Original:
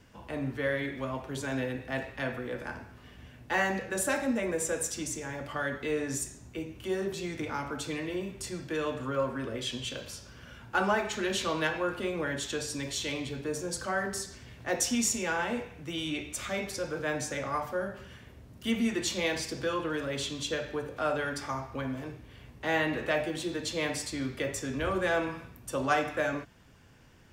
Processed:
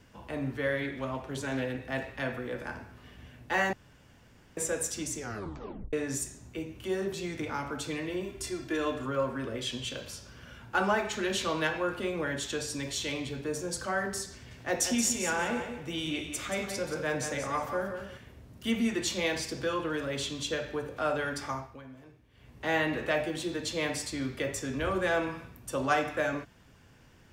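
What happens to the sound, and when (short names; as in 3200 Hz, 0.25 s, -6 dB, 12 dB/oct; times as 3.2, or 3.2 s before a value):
0.82–1.83 Doppler distortion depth 0.14 ms
3.73–4.57 room tone
5.18 tape stop 0.75 s
8.24–9.06 comb 2.9 ms
14.33–18.18 feedback echo 0.179 s, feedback 24%, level -8 dB
21.51–22.61 dip -13.5 dB, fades 0.29 s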